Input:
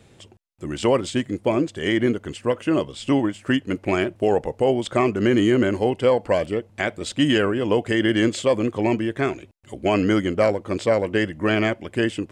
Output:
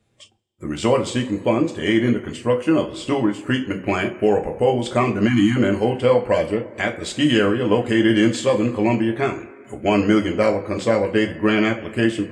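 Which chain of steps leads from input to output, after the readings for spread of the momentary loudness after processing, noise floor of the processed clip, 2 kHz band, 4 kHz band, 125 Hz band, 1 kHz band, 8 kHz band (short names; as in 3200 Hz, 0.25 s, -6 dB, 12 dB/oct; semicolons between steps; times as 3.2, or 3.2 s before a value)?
7 LU, -45 dBFS, +2.0 dB, +1.5 dB, +3.0 dB, +2.5 dB, +2.0 dB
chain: two-slope reverb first 0.29 s, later 2.2 s, from -19 dB, DRR 2 dB; spectral delete 5.28–5.57, 330–700 Hz; spectral noise reduction 16 dB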